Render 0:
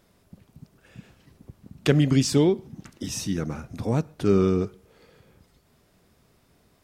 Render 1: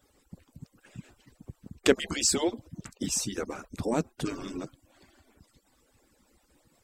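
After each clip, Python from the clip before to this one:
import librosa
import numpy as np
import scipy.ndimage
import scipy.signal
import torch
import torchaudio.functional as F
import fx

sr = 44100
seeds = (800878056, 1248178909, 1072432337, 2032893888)

y = fx.hpss_only(x, sr, part='percussive')
y = fx.peak_eq(y, sr, hz=7700.0, db=10.0, octaves=0.26)
y = F.gain(torch.from_numpy(y), 1.0).numpy()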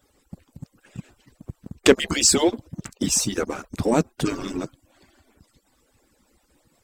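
y = fx.leveller(x, sr, passes=1)
y = F.gain(torch.from_numpy(y), 4.5).numpy()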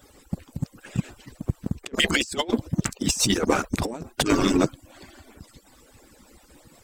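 y = fx.over_compress(x, sr, threshold_db=-27.0, ratio=-0.5)
y = F.gain(torch.from_numpy(y), 4.5).numpy()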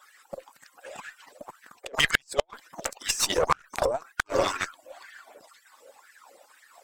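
y = fx.filter_lfo_highpass(x, sr, shape='sine', hz=2.0, low_hz=530.0, high_hz=1800.0, q=6.5)
y = fx.cheby_harmonics(y, sr, harmonics=(2, 8), levels_db=(-9, -19), full_scale_db=1.0)
y = fx.gate_flip(y, sr, shuts_db=-4.0, range_db=-35)
y = F.gain(torch.from_numpy(y), -3.5).numpy()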